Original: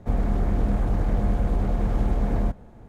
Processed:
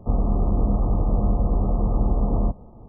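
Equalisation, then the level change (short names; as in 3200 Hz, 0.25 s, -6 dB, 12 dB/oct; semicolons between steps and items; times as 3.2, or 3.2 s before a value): brick-wall FIR low-pass 1300 Hz; +2.0 dB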